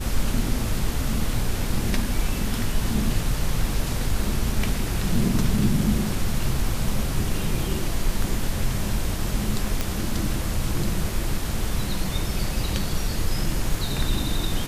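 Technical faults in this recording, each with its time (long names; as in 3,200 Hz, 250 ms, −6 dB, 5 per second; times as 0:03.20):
0:09.81: click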